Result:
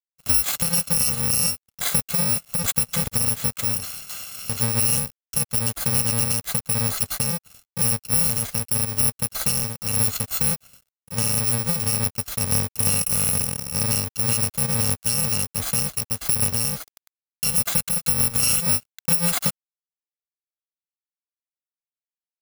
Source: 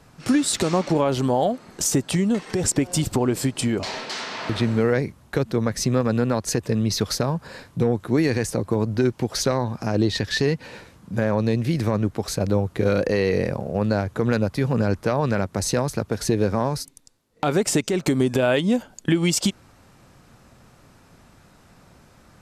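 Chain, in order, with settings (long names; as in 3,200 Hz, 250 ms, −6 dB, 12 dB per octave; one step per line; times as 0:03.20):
samples in bit-reversed order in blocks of 128 samples
dead-zone distortion −38 dBFS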